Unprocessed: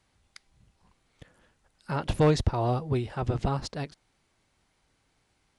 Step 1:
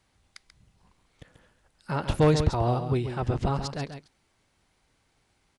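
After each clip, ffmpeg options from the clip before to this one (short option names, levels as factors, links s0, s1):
-af "aecho=1:1:137:0.355,volume=1.12"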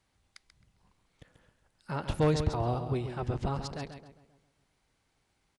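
-filter_complex "[0:a]asplit=2[s0][s1];[s1]adelay=265,lowpass=f=1300:p=1,volume=0.188,asplit=2[s2][s3];[s3]adelay=265,lowpass=f=1300:p=1,volume=0.24,asplit=2[s4][s5];[s5]adelay=265,lowpass=f=1300:p=1,volume=0.24[s6];[s0][s2][s4][s6]amix=inputs=4:normalize=0,volume=0.531"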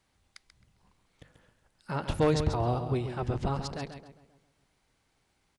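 -af "bandreject=f=50:t=h:w=6,bandreject=f=100:t=h:w=6,bandreject=f=150:t=h:w=6,volume=1.26"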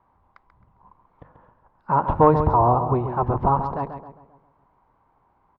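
-af "lowpass=f=1000:t=q:w=5.6,volume=2.11"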